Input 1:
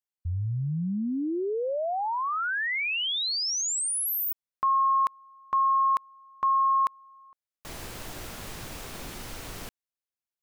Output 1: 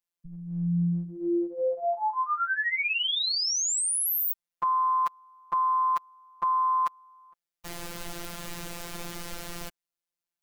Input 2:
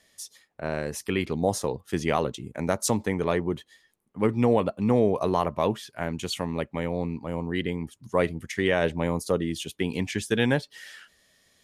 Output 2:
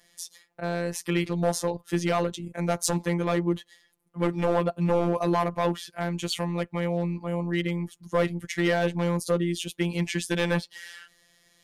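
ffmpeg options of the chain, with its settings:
ffmpeg -i in.wav -af "asoftclip=type=hard:threshold=-17dB,afftfilt=real='hypot(re,im)*cos(PI*b)':imag='0':win_size=1024:overlap=0.75,acontrast=42,volume=-1dB" out.wav

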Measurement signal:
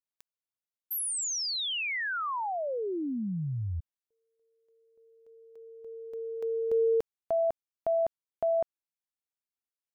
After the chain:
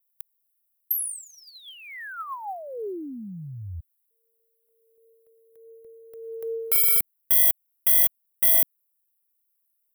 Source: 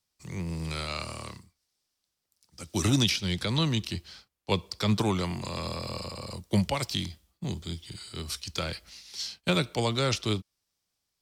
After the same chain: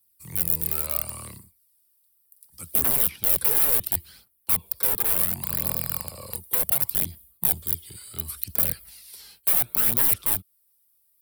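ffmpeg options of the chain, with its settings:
ffmpeg -i in.wav -filter_complex "[0:a]acrossover=split=270|1100|2000[link_01][link_02][link_03][link_04];[link_04]acompressor=threshold=-49dB:ratio=8:attack=22:release=56:knee=6:detection=peak[link_05];[link_01][link_02][link_03][link_05]amix=inputs=4:normalize=0,alimiter=limit=-20dB:level=0:latency=1:release=411,acontrast=49,aeval=exprs='(mod(11.2*val(0)+1,2)-1)/11.2':channel_layout=same,aphaser=in_gain=1:out_gain=1:delay=2.5:decay=0.41:speed=0.7:type=triangular,aexciter=amount=12.4:drive=7:freq=9200,volume=-9dB" out.wav

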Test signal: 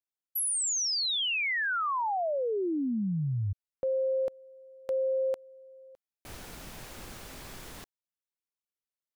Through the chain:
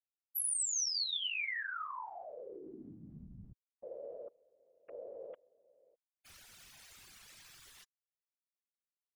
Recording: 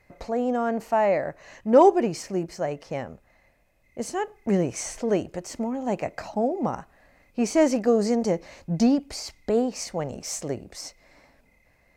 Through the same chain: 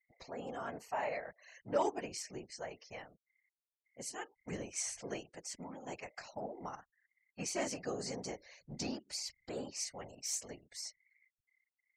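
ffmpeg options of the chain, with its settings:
ffmpeg -i in.wav -af "tiltshelf=frequency=1100:gain=-8.5,afftfilt=real='re*gte(hypot(re,im),0.00708)':imag='im*gte(hypot(re,im),0.00708)':win_size=1024:overlap=0.75,afftfilt=real='hypot(re,im)*cos(2*PI*random(0))':imag='hypot(re,im)*sin(2*PI*random(1))':win_size=512:overlap=0.75,volume=-7.5dB" out.wav

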